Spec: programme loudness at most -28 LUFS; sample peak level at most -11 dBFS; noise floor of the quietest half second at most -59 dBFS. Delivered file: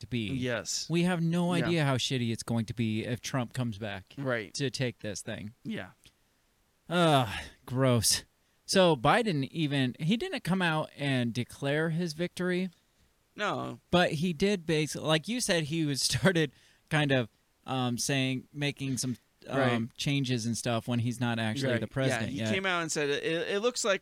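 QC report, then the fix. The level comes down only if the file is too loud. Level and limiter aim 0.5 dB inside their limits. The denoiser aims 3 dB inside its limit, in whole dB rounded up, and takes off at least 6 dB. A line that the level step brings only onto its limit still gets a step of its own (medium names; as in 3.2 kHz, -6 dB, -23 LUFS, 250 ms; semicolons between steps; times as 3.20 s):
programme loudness -30.0 LUFS: pass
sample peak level -11.5 dBFS: pass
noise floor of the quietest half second -71 dBFS: pass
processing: none needed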